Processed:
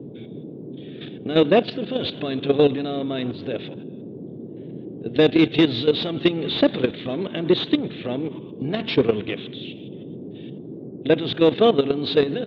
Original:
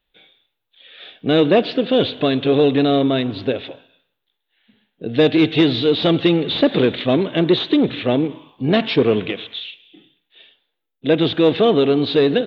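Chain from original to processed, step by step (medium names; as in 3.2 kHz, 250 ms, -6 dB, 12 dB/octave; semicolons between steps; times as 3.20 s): level held to a coarse grid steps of 13 dB; band noise 120–420 Hz -36 dBFS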